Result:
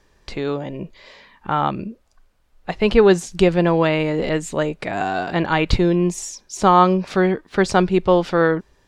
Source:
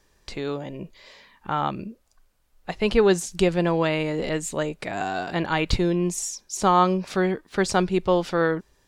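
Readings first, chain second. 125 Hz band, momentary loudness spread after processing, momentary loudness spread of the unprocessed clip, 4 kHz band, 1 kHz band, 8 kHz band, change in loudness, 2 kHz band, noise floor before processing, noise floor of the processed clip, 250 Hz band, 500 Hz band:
+5.5 dB, 17 LU, 17 LU, +2.5 dB, +5.0 dB, -1.0 dB, +5.5 dB, +4.5 dB, -64 dBFS, -60 dBFS, +5.5 dB, +5.5 dB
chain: treble shelf 6.2 kHz -11.5 dB; trim +5.5 dB

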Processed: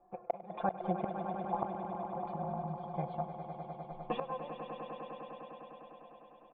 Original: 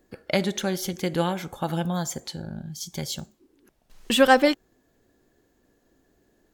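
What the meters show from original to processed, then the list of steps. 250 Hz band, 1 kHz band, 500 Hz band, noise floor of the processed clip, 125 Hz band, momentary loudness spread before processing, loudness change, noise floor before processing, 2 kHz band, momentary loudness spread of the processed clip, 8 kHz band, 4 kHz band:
-14.5 dB, -8.0 dB, -13.5 dB, -58 dBFS, -11.0 dB, 17 LU, -14.5 dB, -68 dBFS, -25.0 dB, 14 LU, under -40 dB, -28.0 dB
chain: cascade formant filter a; comb 5.8 ms, depth 99%; de-hum 120.5 Hz, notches 6; flange 0.86 Hz, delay 5 ms, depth 1.6 ms, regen +24%; inverted gate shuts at -38 dBFS, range -26 dB; on a send: echo with a slow build-up 101 ms, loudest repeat 5, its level -10.5 dB; on the sum: trim +17.5 dB

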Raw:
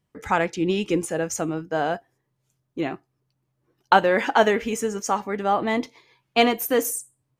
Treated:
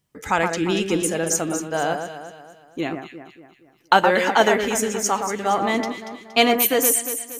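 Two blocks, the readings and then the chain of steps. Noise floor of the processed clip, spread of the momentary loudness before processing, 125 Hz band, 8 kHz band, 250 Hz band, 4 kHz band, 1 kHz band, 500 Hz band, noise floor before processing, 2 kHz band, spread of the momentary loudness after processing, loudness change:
-56 dBFS, 11 LU, +1.0 dB, +9.0 dB, +1.5 dB, +5.5 dB, +2.0 dB, +1.5 dB, -76 dBFS, +3.5 dB, 13 LU, +3.0 dB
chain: treble shelf 3.4 kHz +10 dB; on a send: echo whose repeats swap between lows and highs 117 ms, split 1.9 kHz, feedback 65%, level -5.5 dB

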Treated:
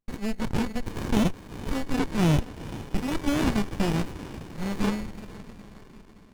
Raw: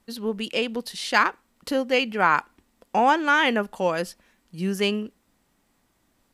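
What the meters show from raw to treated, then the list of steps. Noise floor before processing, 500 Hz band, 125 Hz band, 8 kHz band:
-69 dBFS, -7.5 dB, +10.0 dB, -1.0 dB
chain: split-band scrambler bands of 2 kHz; gate -55 dBFS, range -23 dB; treble shelf 10 kHz -4.5 dB; in parallel at +2 dB: compression, threshold -28 dBFS, peak gain reduction 13.5 dB; on the sum: Chebyshev shaper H 5 -24 dB, 6 -23 dB, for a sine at -3 dBFS; on a send: echo that smears into a reverb 451 ms, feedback 51%, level -11 dB; on the sum: sliding maximum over 65 samples; trim -4 dB

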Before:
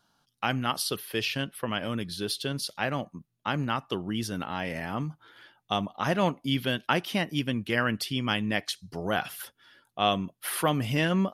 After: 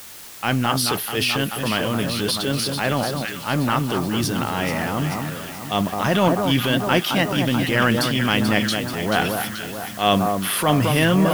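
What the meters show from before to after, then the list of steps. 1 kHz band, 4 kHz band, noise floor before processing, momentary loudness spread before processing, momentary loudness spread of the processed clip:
+8.5 dB, +8.5 dB, -76 dBFS, 8 LU, 7 LU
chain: echo whose repeats swap between lows and highs 217 ms, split 1.4 kHz, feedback 74%, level -6 dB; transient shaper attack -7 dB, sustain +5 dB; word length cut 8-bit, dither triangular; trim +8.5 dB

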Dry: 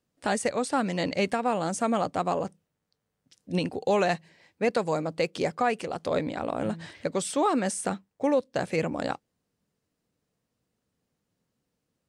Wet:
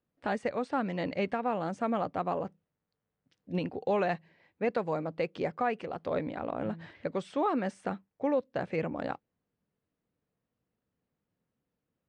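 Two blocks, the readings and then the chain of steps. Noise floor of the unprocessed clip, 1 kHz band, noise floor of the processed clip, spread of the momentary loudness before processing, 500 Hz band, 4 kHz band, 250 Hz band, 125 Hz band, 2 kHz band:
-82 dBFS, -4.5 dB, under -85 dBFS, 7 LU, -4.5 dB, -11.0 dB, -4.5 dB, -4.5 dB, -5.5 dB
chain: low-pass 2.6 kHz 12 dB/octave; trim -4.5 dB

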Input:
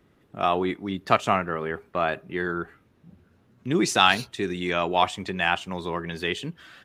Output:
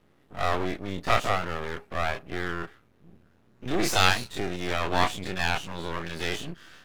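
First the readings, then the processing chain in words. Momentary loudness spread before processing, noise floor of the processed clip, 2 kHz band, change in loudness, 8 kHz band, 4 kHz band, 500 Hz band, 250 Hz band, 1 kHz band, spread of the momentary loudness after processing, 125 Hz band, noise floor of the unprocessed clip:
12 LU, -62 dBFS, -2.0 dB, -3.0 dB, 0.0 dB, -2.0 dB, -4.0 dB, -5.0 dB, -4.0 dB, 12 LU, 0.0 dB, -63 dBFS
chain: every event in the spectrogram widened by 60 ms; half-wave rectifier; trim -2 dB

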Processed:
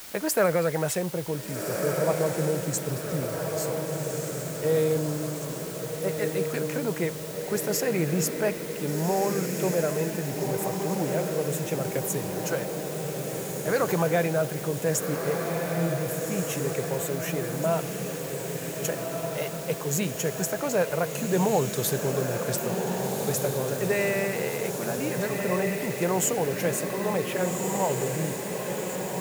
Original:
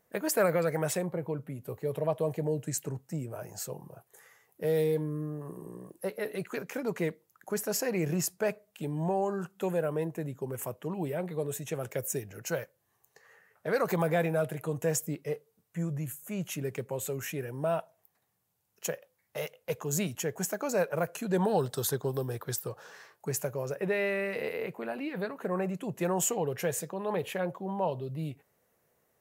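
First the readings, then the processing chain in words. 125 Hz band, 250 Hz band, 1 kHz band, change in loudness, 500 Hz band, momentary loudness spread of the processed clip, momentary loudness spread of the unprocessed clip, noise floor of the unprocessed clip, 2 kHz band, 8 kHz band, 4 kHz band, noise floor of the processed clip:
+5.5 dB, +5.5 dB, +5.5 dB, +5.0 dB, +5.5 dB, 7 LU, 11 LU, -75 dBFS, +5.5 dB, +6.0 dB, +8.0 dB, -34 dBFS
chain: echo that smears into a reverb 1537 ms, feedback 61%, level -4 dB; in parallel at -6.5 dB: word length cut 6-bit, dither triangular

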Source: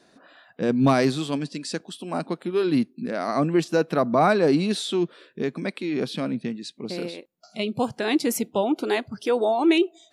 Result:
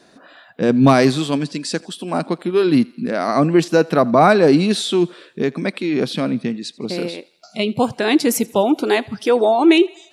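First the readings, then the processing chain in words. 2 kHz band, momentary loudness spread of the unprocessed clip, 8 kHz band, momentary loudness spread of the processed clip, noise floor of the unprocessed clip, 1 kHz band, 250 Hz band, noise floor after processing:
+7.0 dB, 12 LU, +7.0 dB, 12 LU, -60 dBFS, +7.0 dB, +7.0 dB, -51 dBFS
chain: thinning echo 83 ms, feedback 59%, high-pass 460 Hz, level -23 dB; trim +7 dB

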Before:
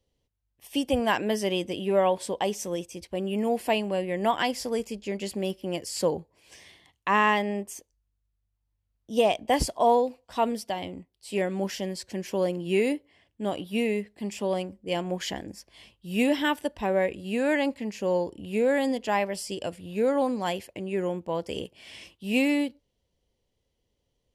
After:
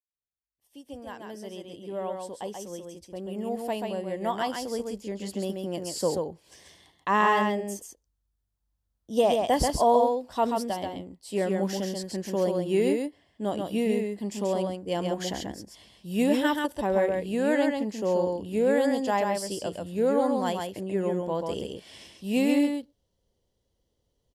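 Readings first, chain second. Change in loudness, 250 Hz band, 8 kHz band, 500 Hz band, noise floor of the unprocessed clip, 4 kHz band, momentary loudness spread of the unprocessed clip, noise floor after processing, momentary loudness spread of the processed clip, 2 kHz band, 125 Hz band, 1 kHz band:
0.0 dB, +0.5 dB, -0.5 dB, 0.0 dB, -78 dBFS, -3.5 dB, 11 LU, -78 dBFS, 16 LU, -3.5 dB, +0.5 dB, 0.0 dB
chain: fade-in on the opening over 7.12 s; peaking EQ 2.4 kHz -9.5 dB 0.56 oct; on a send: delay 135 ms -4 dB; on the sum: endings held to a fixed fall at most 490 dB/s

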